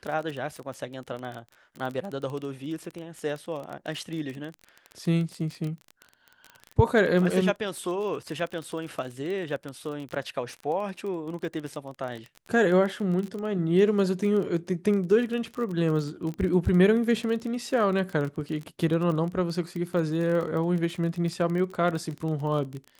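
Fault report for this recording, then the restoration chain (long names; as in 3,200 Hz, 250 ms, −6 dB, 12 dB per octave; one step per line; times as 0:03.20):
surface crackle 24 per second −31 dBFS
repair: click removal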